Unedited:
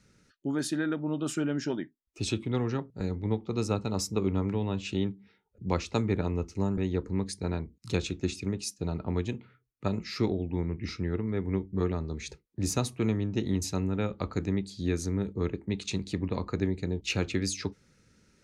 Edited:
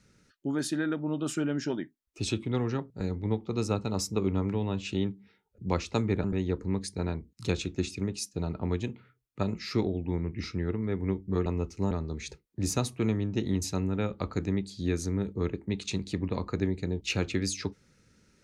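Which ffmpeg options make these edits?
ffmpeg -i in.wav -filter_complex "[0:a]asplit=4[link_01][link_02][link_03][link_04];[link_01]atrim=end=6.242[link_05];[link_02]atrim=start=6.688:end=11.912[link_06];[link_03]atrim=start=6.238:end=6.692[link_07];[link_04]atrim=start=11.908[link_08];[link_05][link_06]acrossfade=duration=0.004:curve1=hsin:curve2=hsin[link_09];[link_09][link_07]acrossfade=duration=0.004:curve1=hsin:curve2=hsin[link_10];[link_10][link_08]acrossfade=duration=0.004:curve1=hsin:curve2=hsin" out.wav

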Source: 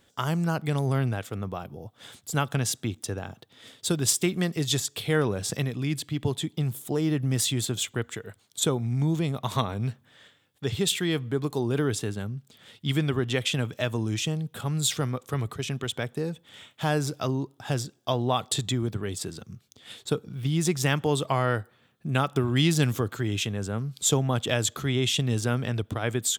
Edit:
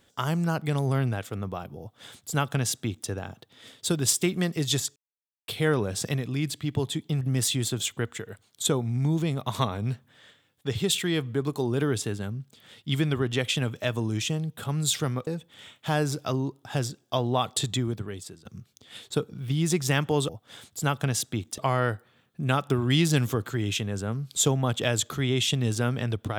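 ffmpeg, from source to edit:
ffmpeg -i in.wav -filter_complex "[0:a]asplit=7[link_01][link_02][link_03][link_04][link_05][link_06][link_07];[link_01]atrim=end=4.96,asetpts=PTS-STARTPTS,afade=type=out:start_time=4.956:duration=0.004:curve=hsin,apad=pad_dur=0.52[link_08];[link_02]atrim=start=4.96:end=6.692,asetpts=PTS-STARTPTS,afade=type=in:duration=0.004:curve=hsin[link_09];[link_03]atrim=start=7.178:end=15.242[link_10];[link_04]atrim=start=16.218:end=19.4,asetpts=PTS-STARTPTS,afade=type=out:start_time=2.532:duration=0.65:silence=0.141254[link_11];[link_05]atrim=start=19.4:end=21.242,asetpts=PTS-STARTPTS,afade=type=in:duration=0.004:curve=hsin:silence=0.141254[link_12];[link_06]atrim=start=1.798:end=3.092[link_13];[link_07]atrim=start=21.238[link_14];[link_08][link_09]concat=n=2:v=0:a=1[link_15];[link_15][link_10]acrossfade=duration=0.004:curve1=hsin:curve2=hsin[link_16];[link_11][link_12]concat=n=2:v=0:a=1[link_17];[link_16][link_17]acrossfade=duration=0.004:curve1=hsin:curve2=hsin[link_18];[link_18][link_13]acrossfade=duration=0.004:curve1=hsin:curve2=hsin[link_19];[link_19][link_14]acrossfade=duration=0.004:curve1=hsin:curve2=hsin" out.wav

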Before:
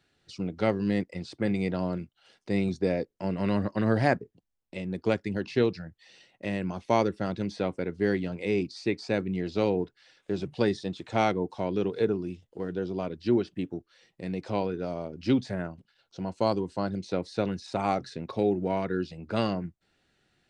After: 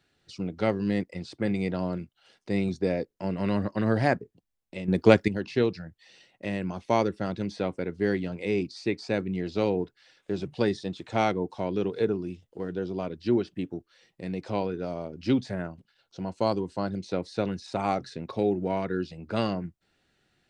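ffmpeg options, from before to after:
ffmpeg -i in.wav -filter_complex "[0:a]asplit=3[link_01][link_02][link_03];[link_01]atrim=end=4.882[link_04];[link_02]atrim=start=4.878:end=5.282,asetpts=PTS-STARTPTS,volume=9dB[link_05];[link_03]atrim=start=5.278[link_06];[link_04][link_05]acrossfade=duration=0.004:curve1=hsin:curve2=hsin[link_07];[link_07][link_06]acrossfade=duration=0.004:curve1=hsin:curve2=hsin" out.wav

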